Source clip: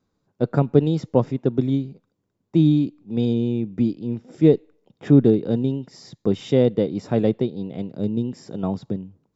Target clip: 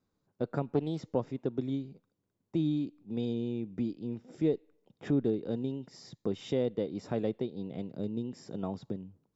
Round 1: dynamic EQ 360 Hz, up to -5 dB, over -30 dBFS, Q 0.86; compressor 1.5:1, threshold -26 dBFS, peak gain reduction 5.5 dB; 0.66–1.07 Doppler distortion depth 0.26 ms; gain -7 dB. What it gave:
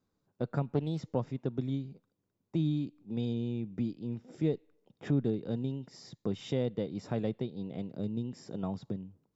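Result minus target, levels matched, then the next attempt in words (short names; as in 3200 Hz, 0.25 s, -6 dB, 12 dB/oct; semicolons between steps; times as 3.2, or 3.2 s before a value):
125 Hz band +4.0 dB
dynamic EQ 140 Hz, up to -5 dB, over -30 dBFS, Q 0.86; compressor 1.5:1, threshold -26 dBFS, peak gain reduction 6 dB; 0.66–1.07 Doppler distortion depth 0.26 ms; gain -7 dB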